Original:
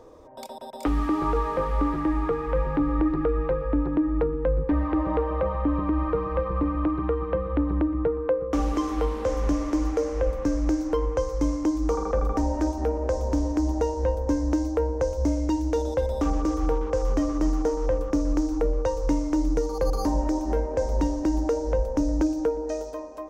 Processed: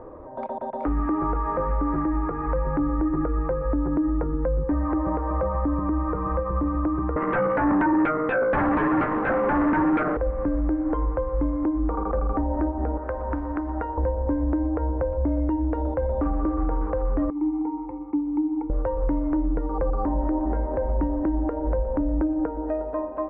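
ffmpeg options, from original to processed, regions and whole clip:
ffmpeg -i in.wav -filter_complex "[0:a]asettb=1/sr,asplit=3[link_01][link_02][link_03];[link_01]atrim=end=7.164[link_04];[link_02]atrim=start=7.16:end=10.17,asetpts=PTS-STARTPTS,afade=type=in:duration=0.004:curve=qsin,afade=type=out:start_time=3.006:duration=0.004:curve=qsin,highpass=frequency=180:width=0.5412,highpass=frequency=180:width=1.3066,aeval=exprs='0.2*sin(PI/2*5.01*val(0)/0.2)':channel_layout=same[link_05];[link_03]atrim=start=10.166[link_06];[link_04][link_05]acrossfade=duration=0.004:curve1=hsin:curve2=qsin[link_07];[link_07][link_06]acrossfade=duration=0.004:curve1=qsin:curve2=hsin,asettb=1/sr,asplit=3[link_08][link_09][link_10];[link_08]atrim=end=12.974[link_11];[link_09]atrim=start=12.97:end=13.98,asetpts=PTS-STARTPTS,afade=type=in:duration=0.004:curve=qsin,afade=type=out:start_time=1.006:duration=0.004:curve=qsin,equalizer=frequency=1400:width=2.1:gain=5.5,acrossover=split=970|5400[link_12][link_13][link_14];[link_12]acompressor=threshold=-36dB:ratio=4[link_15];[link_13]acompressor=threshold=-39dB:ratio=4[link_16];[link_14]acompressor=threshold=-54dB:ratio=4[link_17];[link_15][link_16][link_17]amix=inputs=3:normalize=0,bandreject=frequency=68.99:width_type=h:width=4,bandreject=frequency=137.98:width_type=h:width=4,bandreject=frequency=206.97:width_type=h:width=4,bandreject=frequency=275.96:width_type=h:width=4,bandreject=frequency=344.95:width_type=h:width=4,bandreject=frequency=413.94:width_type=h:width=4,bandreject=frequency=482.93:width_type=h:width=4,bandreject=frequency=551.92:width_type=h:width=4,bandreject=frequency=620.91:width_type=h:width=4,bandreject=frequency=689.9:width_type=h:width=4,bandreject=frequency=758.89:width_type=h:width=4,bandreject=frequency=827.88:width_type=h:width=4,bandreject=frequency=896.87:width_type=h:width=4,bandreject=frequency=965.86:width_type=h:width=4,bandreject=frequency=1034.85:width_type=h:width=4,bandreject=frequency=1103.84:width_type=h:width=4,bandreject=frequency=1172.83:width_type=h:width=4[link_18];[link_10]atrim=start=13.976[link_19];[link_11][link_18]acrossfade=duration=0.004:curve1=hsin:curve2=qsin[link_20];[link_20][link_19]acrossfade=duration=0.004:curve1=qsin:curve2=hsin,asettb=1/sr,asplit=3[link_21][link_22][link_23];[link_21]atrim=end=17.304[link_24];[link_22]atrim=start=17.3:end=18.7,asetpts=PTS-STARTPTS,afade=type=in:duration=0.004:curve=qsin,afade=type=out:start_time=1.396:duration=0.004:curve=qsin,asplit=3[link_25][link_26][link_27];[link_25]bandpass=frequency=300:width_type=q:width=8,volume=0dB[link_28];[link_26]bandpass=frequency=870:width_type=q:width=8,volume=-6dB[link_29];[link_27]bandpass=frequency=2240:width_type=q:width=8,volume=-9dB[link_30];[link_28][link_29][link_30]amix=inputs=3:normalize=0,equalizer=frequency=370:width_type=o:width=1.1:gain=-4.5,aecho=1:1:2.3:0.51,atrim=end_sample=61740[link_31];[link_23]atrim=start=18.696[link_32];[link_24][link_31]acrossfade=duration=0.004:curve1=hsin:curve2=qsin[link_33];[link_33][link_32]acrossfade=duration=0.004:curve1=qsin:curve2=hsin,lowpass=frequency=1700:width=0.5412,lowpass=frequency=1700:width=1.3066,bandreject=frequency=460:width=12,alimiter=level_in=1dB:limit=-24dB:level=0:latency=1:release=318,volume=-1dB,volume=8.5dB" out.wav

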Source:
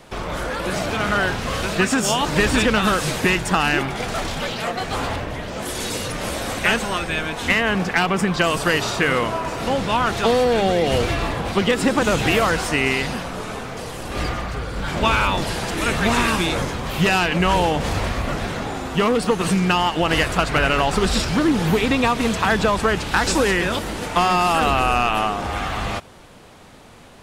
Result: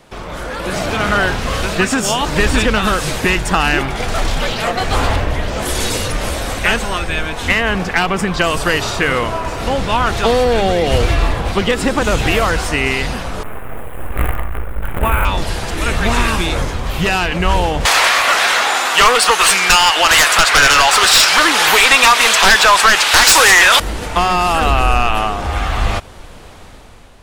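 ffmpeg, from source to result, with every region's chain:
ffmpeg -i in.wav -filter_complex "[0:a]asettb=1/sr,asplit=3[link_01][link_02][link_03];[link_01]atrim=end=13.434[link_04];[link_02]atrim=start=13.43:end=15.25,asetpts=PTS-STARTPTS,afade=type=in:duration=0.004:curve=qsin,afade=type=out:start_time=1.816:duration=0.004:curve=qsin,acrusher=bits=4:dc=4:mix=0:aa=0.000001,asuperstop=centerf=5200:order=4:qfactor=0.61[link_05];[link_03]atrim=start=15.246[link_06];[link_04][link_05]acrossfade=duration=0.004:curve1=hsin:curve2=qsin[link_07];[link_07][link_06]acrossfade=duration=0.004:curve1=qsin:curve2=hsin,asettb=1/sr,asplit=3[link_08][link_09][link_10];[link_08]atrim=end=17.854[link_11];[link_09]atrim=start=17.85:end=23.8,asetpts=PTS-STARTPTS,afade=type=in:duration=0.004:curve=qsin,afade=type=out:start_time=5.946:duration=0.004:curve=qsin,highpass=1100,aeval=exprs='0.501*sin(PI/2*4.47*val(0)/0.501)':channel_layout=same[link_12];[link_10]atrim=start=23.796[link_13];[link_11][link_12]acrossfade=duration=0.004:curve1=hsin:curve2=qsin[link_14];[link_14][link_13]acrossfade=duration=0.004:curve1=qsin:curve2=hsin,asubboost=boost=3.5:cutoff=79,dynaudnorm=framelen=150:gausssize=9:maxgain=11.5dB,volume=-1dB" out.wav

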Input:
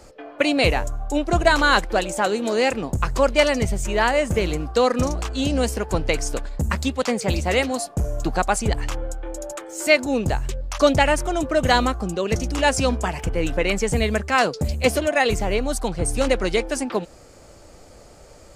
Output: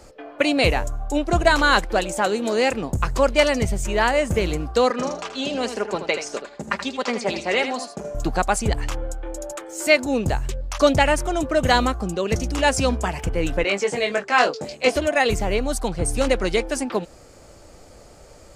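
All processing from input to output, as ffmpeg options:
ffmpeg -i in.wav -filter_complex "[0:a]asettb=1/sr,asplit=3[link_01][link_02][link_03];[link_01]atrim=end=4.904[link_04];[link_02]atrim=start=4.9:end=8.15,asetpts=PTS-STARTPTS,afade=type=in:duration=0.004:curve=qsin,afade=type=out:start_time=3.246:duration=0.004:curve=qsin,highpass=300,lowpass=5400,aecho=1:1:5:0.46,atrim=end_sample=143325,aecho=1:1:79:0.335,atrim=end_sample=143325[link_05];[link_03]atrim=start=8.146[link_06];[link_04][link_05]acrossfade=duration=0.004:curve1=hsin:curve2=qsin[link_07];[link_07][link_06]acrossfade=duration=0.004:curve1=qsin:curve2=hsin,asettb=1/sr,asplit=3[link_08][link_09][link_10];[link_08]atrim=end=13.644[link_11];[link_09]atrim=start=13.64:end=14.96,asetpts=PTS-STARTPTS,afade=type=in:duration=0.004:curve=qsin,afade=type=out:start_time=1.316:duration=0.004:curve=qsin,highpass=330,lowpass=6100,asplit=2[link_12][link_13];[link_13]adelay=20,volume=-3.5dB[link_14];[link_12][link_14]amix=inputs=2:normalize=0,atrim=end_sample=58212[link_15];[link_10]atrim=start=14.956[link_16];[link_11][link_15]acrossfade=duration=0.004:curve1=hsin:curve2=qsin[link_17];[link_17][link_16]acrossfade=duration=0.004:curve1=qsin:curve2=hsin" out.wav

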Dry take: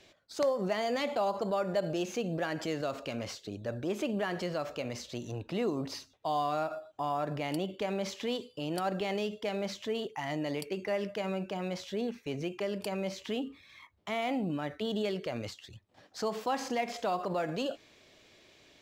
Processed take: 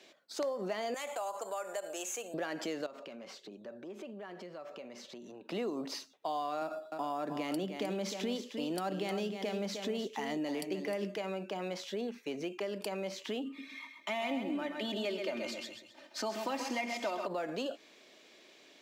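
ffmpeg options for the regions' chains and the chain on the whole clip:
ffmpeg -i in.wav -filter_complex "[0:a]asettb=1/sr,asplit=3[link_01][link_02][link_03];[link_01]atrim=end=0.944[link_04];[link_02]atrim=start=0.94:end=2.34,asetpts=PTS-STARTPTS,afade=type=in:duration=0.004:curve=qsin,afade=type=out:start_time=1.396:duration=0.004:curve=qsin,highpass=680,highshelf=frequency=6000:width_type=q:width=3:gain=8.5,acompressor=threshold=-37dB:ratio=1.5:attack=3.2:release=140:knee=1:detection=peak[link_05];[link_03]atrim=start=2.336[link_06];[link_04][link_05]acrossfade=duration=0.004:curve1=hsin:curve2=qsin[link_07];[link_07][link_06]acrossfade=duration=0.004:curve1=qsin:curve2=hsin,asettb=1/sr,asplit=3[link_08][link_09][link_10];[link_08]atrim=end=2.864[link_11];[link_09]atrim=start=2.86:end=5.49,asetpts=PTS-STARTPTS,afade=type=in:duration=0.004:curve=qsin,afade=type=out:start_time=2.626:duration=0.004:curve=qsin,highshelf=frequency=3700:gain=-10,aecho=1:1:5.2:0.31,atrim=end_sample=115983,acompressor=threshold=-45dB:ratio=4:attack=3.2:release=140:knee=1:detection=peak[link_12];[link_10]atrim=start=5.486[link_13];[link_11][link_12]acrossfade=duration=0.004:curve1=hsin:curve2=qsin[link_14];[link_14][link_13]acrossfade=duration=0.004:curve1=qsin:curve2=hsin,asettb=1/sr,asplit=3[link_15][link_16][link_17];[link_15]atrim=end=6.614[link_18];[link_16]atrim=start=6.61:end=11.17,asetpts=PTS-STARTPTS,afade=type=in:duration=0.004:curve=qsin,afade=type=out:start_time=4.556:duration=0.004:curve=qsin,highpass=frequency=180:width=0.5412,highpass=frequency=180:width=1.3066,bass=frequency=250:gain=13,treble=frequency=4000:gain=4,aecho=1:1:308:0.355,atrim=end_sample=201096[link_19];[link_17]atrim=start=11.166[link_20];[link_18][link_19]acrossfade=duration=0.004:curve1=hsin:curve2=qsin[link_21];[link_21][link_20]acrossfade=duration=0.004:curve1=qsin:curve2=hsin,asettb=1/sr,asplit=3[link_22][link_23][link_24];[link_22]atrim=end=13.454[link_25];[link_23]atrim=start=13.45:end=17.27,asetpts=PTS-STARTPTS,afade=type=in:duration=0.004:curve=qsin,afade=type=out:start_time=3.816:duration=0.004:curve=qsin,equalizer=frequency=2400:width_type=o:width=0.65:gain=4,aecho=1:1:3.3:0.77,atrim=end_sample=168462,aecho=1:1:131|262|393|524:0.447|0.152|0.0516|0.0176,atrim=end_sample=168462[link_26];[link_24]atrim=start=17.266[link_27];[link_25][link_26]acrossfade=duration=0.004:curve1=hsin:curve2=qsin[link_28];[link_28][link_27]acrossfade=duration=0.004:curve1=qsin:curve2=hsin,highpass=frequency=210:width=0.5412,highpass=frequency=210:width=1.3066,acompressor=threshold=-36dB:ratio=2.5,volume=1dB" out.wav

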